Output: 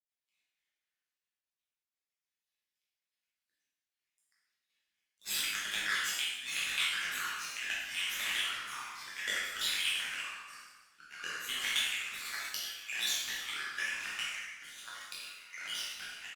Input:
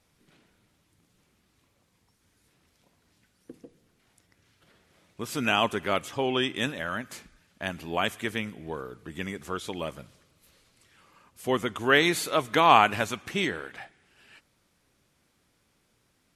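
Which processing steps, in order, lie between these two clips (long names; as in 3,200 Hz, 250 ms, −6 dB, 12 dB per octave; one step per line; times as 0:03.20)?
time-frequency cells dropped at random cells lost 37%
elliptic high-pass filter 1,700 Hz, stop band 40 dB
parametric band 9,300 Hz −10 dB 0.25 octaves
compressor whose output falls as the input rises −43 dBFS, ratio −1
power curve on the samples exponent 2
reverse bouncing-ball delay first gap 20 ms, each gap 1.3×, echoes 5
convolution reverb RT60 0.90 s, pre-delay 4 ms, DRR −5.5 dB
delay with pitch and tempo change per echo 206 ms, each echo −3 semitones, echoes 2, each echo −6 dB
level +8 dB
Opus 64 kbit/s 48,000 Hz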